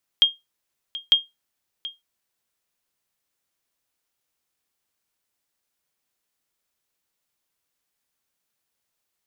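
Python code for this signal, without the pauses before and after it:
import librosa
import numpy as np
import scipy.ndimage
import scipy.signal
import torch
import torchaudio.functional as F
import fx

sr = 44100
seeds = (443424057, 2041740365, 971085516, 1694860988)

y = fx.sonar_ping(sr, hz=3230.0, decay_s=0.19, every_s=0.9, pings=2, echo_s=0.73, echo_db=-17.0, level_db=-7.0)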